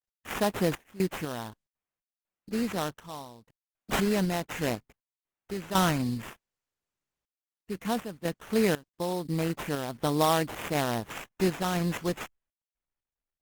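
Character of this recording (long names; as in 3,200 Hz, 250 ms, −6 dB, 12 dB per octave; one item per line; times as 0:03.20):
aliases and images of a low sample rate 4,600 Hz, jitter 20%
sample-and-hold tremolo 4 Hz, depth 95%
Opus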